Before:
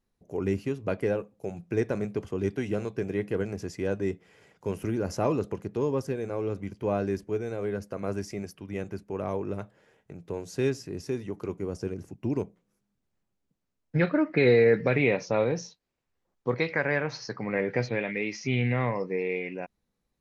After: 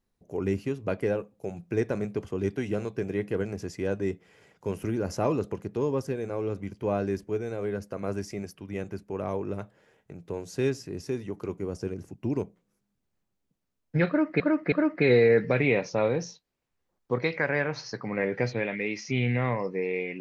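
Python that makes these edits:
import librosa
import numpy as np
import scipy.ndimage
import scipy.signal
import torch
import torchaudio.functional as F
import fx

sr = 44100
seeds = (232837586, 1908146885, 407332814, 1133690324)

y = fx.edit(x, sr, fx.repeat(start_s=14.08, length_s=0.32, count=3), tone=tone)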